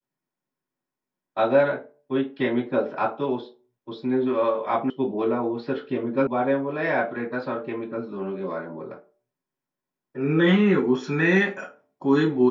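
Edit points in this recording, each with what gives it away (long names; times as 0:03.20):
0:04.90: cut off before it has died away
0:06.27: cut off before it has died away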